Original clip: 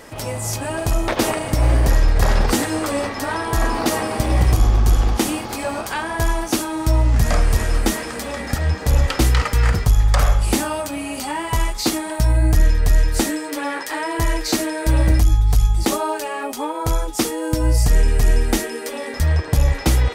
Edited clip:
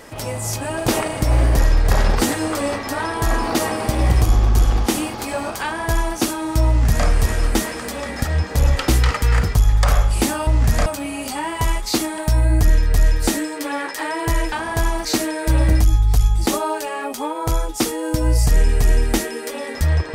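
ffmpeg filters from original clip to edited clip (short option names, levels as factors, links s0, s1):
-filter_complex "[0:a]asplit=6[s0][s1][s2][s3][s4][s5];[s0]atrim=end=0.882[s6];[s1]atrim=start=1.188:end=10.782[s7];[s2]atrim=start=6.988:end=7.382[s8];[s3]atrim=start=10.778:end=14.442[s9];[s4]atrim=start=5.948:end=6.482[s10];[s5]atrim=start=14.438[s11];[s6][s7]acrossfade=d=0.004:c1=hsin:c2=hsin[s12];[s12][s8]acrossfade=d=0.004:c1=hsin:c2=hsin[s13];[s13][s9]acrossfade=d=0.004:c1=hsin:c2=hsin[s14];[s14][s10]acrossfade=d=0.004:c1=hsin:c2=hsin[s15];[s15][s11]acrossfade=d=0.004:c1=hsin:c2=hsin"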